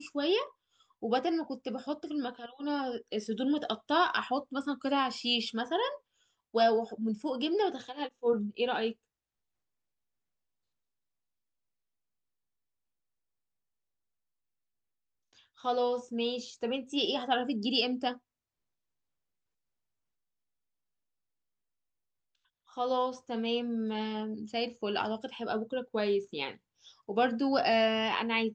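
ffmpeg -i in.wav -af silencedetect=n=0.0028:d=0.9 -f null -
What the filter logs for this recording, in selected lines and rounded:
silence_start: 8.93
silence_end: 15.33 | silence_duration: 6.40
silence_start: 18.18
silence_end: 22.69 | silence_duration: 4.52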